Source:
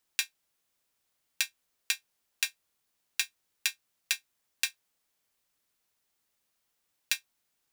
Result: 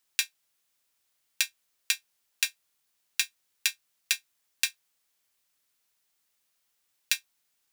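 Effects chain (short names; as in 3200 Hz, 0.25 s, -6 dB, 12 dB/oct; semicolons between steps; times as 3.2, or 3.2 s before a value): tilt shelf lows -3.5 dB, about 1100 Hz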